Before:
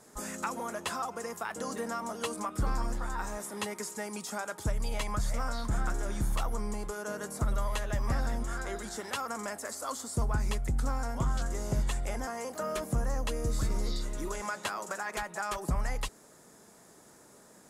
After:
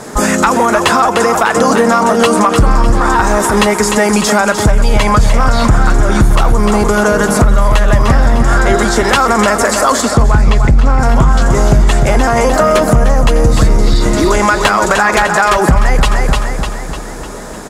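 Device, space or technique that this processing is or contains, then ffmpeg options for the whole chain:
loud club master: -filter_complex "[0:a]asettb=1/sr,asplit=3[link_01][link_02][link_03];[link_01]atrim=end=10.024[link_04];[link_02]atrim=start=10.02:end=11,asetpts=PTS-STARTPTS,afade=type=in:duration=0.004:curve=qsin,afade=type=out:start_time=0.976:duration=0.004:curve=qsin,lowpass=5200[link_05];[link_03]atrim=start=10.996[link_06];[link_04][link_05]acrossfade=duration=0.004:curve1=hsin:curve2=qsin[link_07];[link_07][link_06]acrossfade=duration=0.004:curve1=qsin:curve2=hsin,highshelf=frequency=6700:gain=-11.5,aecho=1:1:301|602|903|1204|1505|1806:0.355|0.181|0.0923|0.0471|0.024|0.0122,acompressor=threshold=-31dB:ratio=6,asoftclip=type=hard:threshold=-28.5dB,alimiter=level_in=31dB:limit=-1dB:release=50:level=0:latency=1,volume=-1dB"

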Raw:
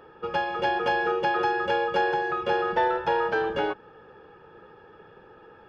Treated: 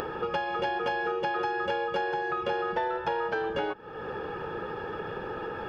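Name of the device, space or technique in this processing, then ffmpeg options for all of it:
upward and downward compression: -af "acompressor=mode=upward:threshold=-28dB:ratio=2.5,acompressor=threshold=-32dB:ratio=4,volume=4dB"

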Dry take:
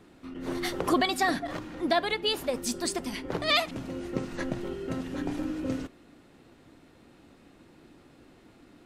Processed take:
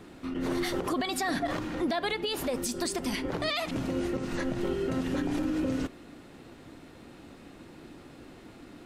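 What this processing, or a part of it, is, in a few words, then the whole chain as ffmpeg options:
stacked limiters: -af "alimiter=limit=-18.5dB:level=0:latency=1:release=191,alimiter=limit=-22.5dB:level=0:latency=1:release=133,alimiter=level_in=4dB:limit=-24dB:level=0:latency=1:release=78,volume=-4dB,volume=6.5dB"

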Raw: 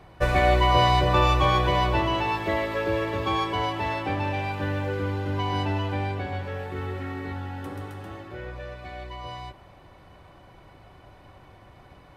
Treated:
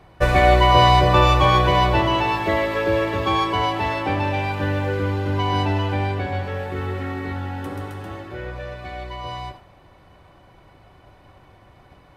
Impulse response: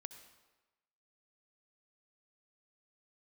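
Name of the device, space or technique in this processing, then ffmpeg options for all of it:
keyed gated reverb: -filter_complex "[0:a]asplit=3[link_01][link_02][link_03];[1:a]atrim=start_sample=2205[link_04];[link_02][link_04]afir=irnorm=-1:irlink=0[link_05];[link_03]apad=whole_len=536432[link_06];[link_05][link_06]sidechaingate=range=-33dB:threshold=-45dB:ratio=16:detection=peak,volume=3.5dB[link_07];[link_01][link_07]amix=inputs=2:normalize=0"

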